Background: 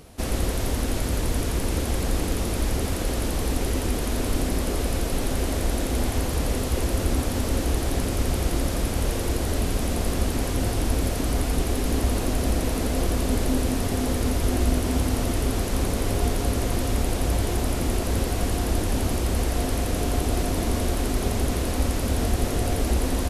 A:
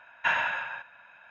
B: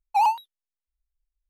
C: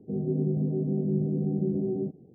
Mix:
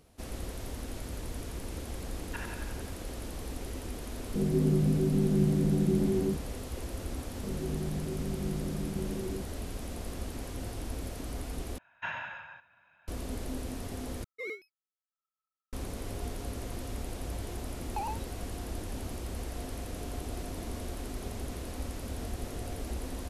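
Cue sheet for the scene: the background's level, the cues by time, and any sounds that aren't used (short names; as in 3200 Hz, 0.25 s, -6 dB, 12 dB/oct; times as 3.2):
background -14 dB
2.09 add A -14 dB + tremolo saw up 11 Hz, depth 75%
4.26 add C -3.5 dB + tilt shelf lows +5 dB
7.34 add C -8.5 dB + steep low-pass 640 Hz
11.78 replace with A -11.5 dB + bell 78 Hz +14.5 dB 2.7 oct
14.24 replace with B -16.5 dB + ring modulator 1300 Hz
17.82 add B -13.5 dB + three-band squash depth 100%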